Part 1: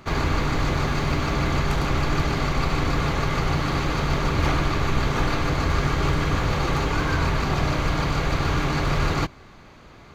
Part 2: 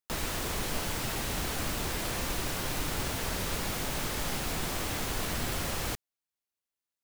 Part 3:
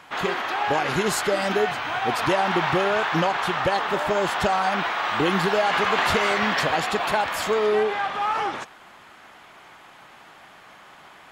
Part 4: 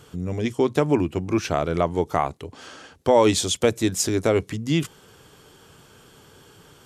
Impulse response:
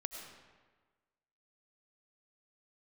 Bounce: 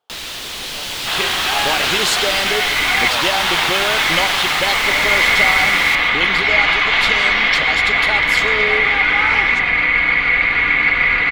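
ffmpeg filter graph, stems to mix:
-filter_complex "[0:a]lowpass=f=2100:t=q:w=12,aecho=1:1:4.1:0.58,adelay=2100,volume=0.473[s0];[1:a]volume=1,asplit=2[s1][s2];[s2]volume=0.224[s3];[2:a]adelay=950,volume=0.473,asplit=2[s4][s5];[s5]volume=0.422[s6];[3:a]bandpass=f=750:t=q:w=4.6:csg=0,volume=0.266,asplit=2[s7][s8];[s8]apad=whole_len=540143[s9];[s0][s9]sidechaincompress=threshold=0.00316:ratio=8:attack=16:release=789[s10];[4:a]atrim=start_sample=2205[s11];[s6][s11]afir=irnorm=-1:irlink=0[s12];[s3]aecho=0:1:138|276|414|552|690:1|0.37|0.137|0.0507|0.0187[s13];[s10][s1][s4][s7][s12][s13]amix=inputs=6:normalize=0,equalizer=f=3500:t=o:w=1.5:g=13.5,dynaudnorm=f=400:g=5:m=3.76,lowshelf=f=240:g=-8"

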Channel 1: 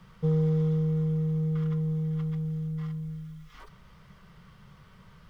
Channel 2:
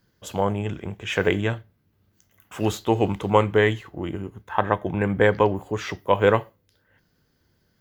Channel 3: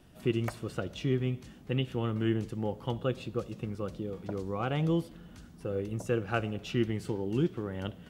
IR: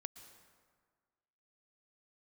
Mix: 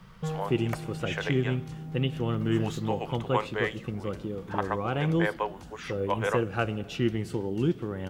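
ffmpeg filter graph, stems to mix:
-filter_complex "[0:a]bandreject=f=159.1:t=h:w=4,bandreject=f=318.2:t=h:w=4,asoftclip=type=hard:threshold=0.0282,volume=1.12,asplit=2[s0][s1];[s1]volume=0.335[s2];[1:a]highpass=640,highshelf=f=9900:g=-11,volume=0.447,asplit=2[s3][s4];[2:a]adelay=250,volume=1,asplit=2[s5][s6];[s6]volume=0.531[s7];[s4]apad=whole_len=233651[s8];[s0][s8]sidechaincompress=threshold=0.01:ratio=8:attack=10:release=1460[s9];[3:a]atrim=start_sample=2205[s10];[s2][s7]amix=inputs=2:normalize=0[s11];[s11][s10]afir=irnorm=-1:irlink=0[s12];[s9][s3][s5][s12]amix=inputs=4:normalize=0"

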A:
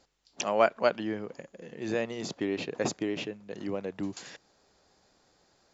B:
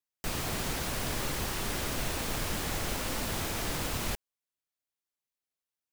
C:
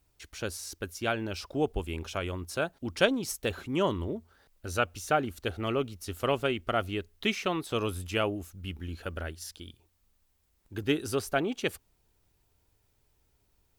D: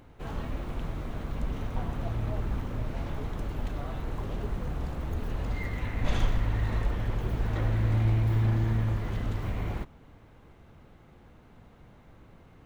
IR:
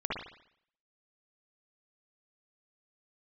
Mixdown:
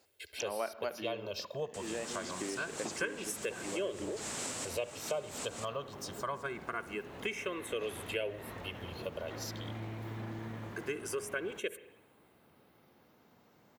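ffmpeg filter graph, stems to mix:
-filter_complex "[0:a]volume=0.596,asplit=2[s0][s1];[s1]volume=0.0944[s2];[1:a]tremolo=f=4.4:d=0.36,lowpass=f=7800:t=q:w=4.6,adelay=1500,volume=0.708,asplit=2[s3][s4];[s4]volume=0.158[s5];[2:a]aecho=1:1:1.9:0.85,asplit=2[s6][s7];[s7]afreqshift=0.25[s8];[s6][s8]amix=inputs=2:normalize=1,volume=1,asplit=3[s9][s10][s11];[s10]volume=0.1[s12];[3:a]adelay=1750,volume=0.473[s13];[s11]apad=whole_len=327661[s14];[s3][s14]sidechaincompress=threshold=0.00562:ratio=8:attack=16:release=161[s15];[4:a]atrim=start_sample=2205[s16];[s2][s5][s12]amix=inputs=3:normalize=0[s17];[s17][s16]afir=irnorm=-1:irlink=0[s18];[s0][s15][s9][s13][s18]amix=inputs=5:normalize=0,highpass=210,acompressor=threshold=0.0141:ratio=2.5"

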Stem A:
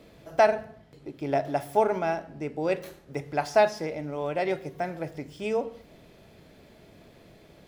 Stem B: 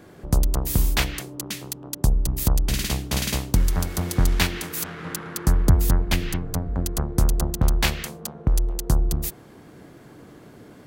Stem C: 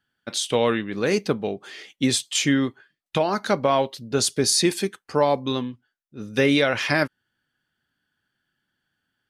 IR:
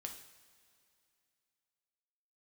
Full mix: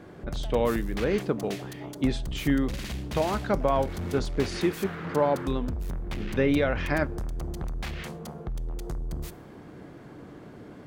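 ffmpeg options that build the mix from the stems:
-filter_complex "[0:a]acompressor=threshold=0.0355:ratio=6,adelay=50,volume=0.158[s0];[1:a]acompressor=threshold=0.0794:ratio=6,asoftclip=type=tanh:threshold=0.0335,volume=0.944,asplit=2[s1][s2];[s2]volume=0.355[s3];[2:a]aemphasis=mode=reproduction:type=75kf,volume=0.596,asplit=2[s4][s5];[s5]volume=0.168[s6];[3:a]atrim=start_sample=2205[s7];[s3][s6]amix=inputs=2:normalize=0[s8];[s8][s7]afir=irnorm=-1:irlink=0[s9];[s0][s1][s4][s9]amix=inputs=4:normalize=0,lowpass=f=2600:p=1"

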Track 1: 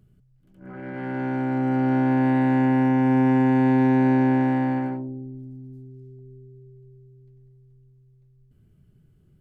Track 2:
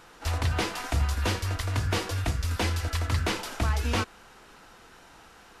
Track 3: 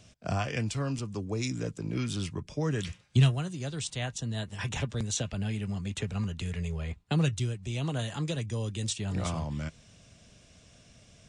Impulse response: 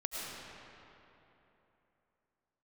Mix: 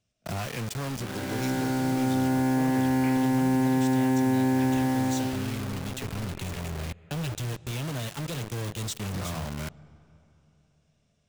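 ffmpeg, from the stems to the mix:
-filter_complex "[0:a]adelay=350,volume=0.944[s0];[1:a]lowpass=f=2300:t=q:w=4.9,adelay=2450,volume=0.141[s1];[2:a]asoftclip=type=hard:threshold=0.0299,volume=0.841,asplit=3[s2][s3][s4];[s3]volume=0.126[s5];[s4]apad=whole_len=355031[s6];[s1][s6]sidechaincompress=threshold=0.00355:ratio=8:attack=16:release=165[s7];[s0][s2]amix=inputs=2:normalize=0,acrusher=bits=5:mix=0:aa=0.000001,acompressor=threshold=0.0708:ratio=2,volume=1[s8];[3:a]atrim=start_sample=2205[s9];[s5][s9]afir=irnorm=-1:irlink=0[s10];[s7][s8][s10]amix=inputs=3:normalize=0"

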